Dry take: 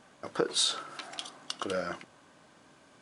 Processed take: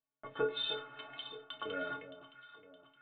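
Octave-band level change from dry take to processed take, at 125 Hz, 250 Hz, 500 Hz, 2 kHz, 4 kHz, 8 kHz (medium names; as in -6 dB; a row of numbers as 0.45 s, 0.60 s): -8.0 dB, -8.5 dB, -4.0 dB, -1.5 dB, -7.5 dB, under -40 dB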